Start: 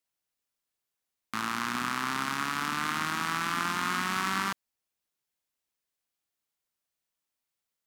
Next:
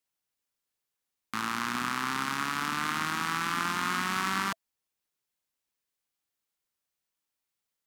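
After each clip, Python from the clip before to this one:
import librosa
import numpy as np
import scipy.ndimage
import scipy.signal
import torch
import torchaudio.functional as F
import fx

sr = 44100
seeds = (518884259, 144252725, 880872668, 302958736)

y = fx.notch(x, sr, hz=660.0, q=14.0)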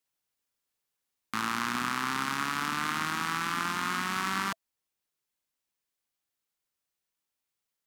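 y = fx.rider(x, sr, range_db=10, speed_s=0.5)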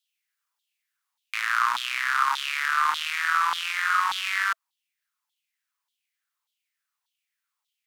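y = fx.filter_lfo_highpass(x, sr, shape='saw_down', hz=1.7, low_hz=890.0, high_hz=3600.0, q=5.2)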